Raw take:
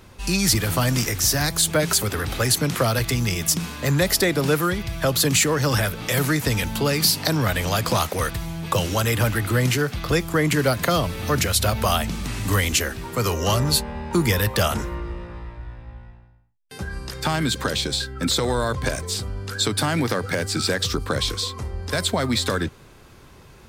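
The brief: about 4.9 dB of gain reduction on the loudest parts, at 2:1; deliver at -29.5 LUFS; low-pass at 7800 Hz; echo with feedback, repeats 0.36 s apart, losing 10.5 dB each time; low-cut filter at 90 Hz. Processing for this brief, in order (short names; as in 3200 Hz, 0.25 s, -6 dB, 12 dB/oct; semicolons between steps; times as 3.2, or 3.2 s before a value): HPF 90 Hz; LPF 7800 Hz; compressor 2:1, threshold -25 dBFS; feedback echo 0.36 s, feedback 30%, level -10.5 dB; gain -3.5 dB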